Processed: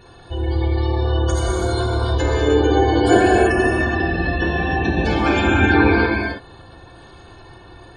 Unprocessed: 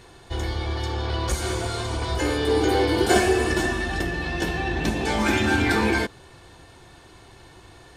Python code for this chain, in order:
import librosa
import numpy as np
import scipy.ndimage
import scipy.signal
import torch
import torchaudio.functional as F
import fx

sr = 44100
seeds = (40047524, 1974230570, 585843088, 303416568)

y = fx.notch(x, sr, hz=2000.0, q=7.3)
y = fx.spec_gate(y, sr, threshold_db=-20, keep='strong')
y = fx.rev_gated(y, sr, seeds[0], gate_ms=350, shape='flat', drr_db=-2.5)
y = y * 10.0 ** (2.0 / 20.0)